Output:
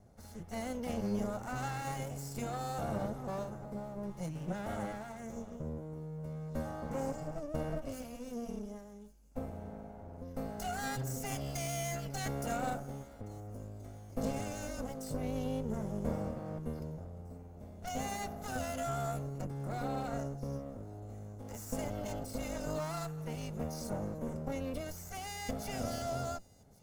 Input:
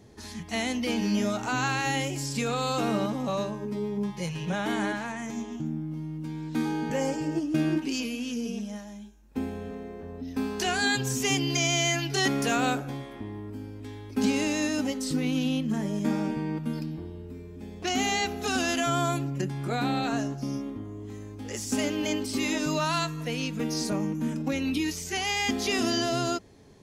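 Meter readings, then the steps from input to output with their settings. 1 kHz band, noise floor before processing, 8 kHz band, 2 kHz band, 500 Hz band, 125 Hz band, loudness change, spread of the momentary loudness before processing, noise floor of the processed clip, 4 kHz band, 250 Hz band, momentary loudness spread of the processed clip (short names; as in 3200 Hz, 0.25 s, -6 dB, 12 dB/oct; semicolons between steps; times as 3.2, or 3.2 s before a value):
-8.5 dB, -42 dBFS, -12.0 dB, -16.0 dB, -7.5 dB, -6.5 dB, -11.0 dB, 13 LU, -51 dBFS, -18.5 dB, -12.0 dB, 10 LU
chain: minimum comb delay 1.4 ms; bell 3200 Hz -14.5 dB 2.2 oct; thin delay 1.122 s, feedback 54%, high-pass 4500 Hz, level -21 dB; gain -5 dB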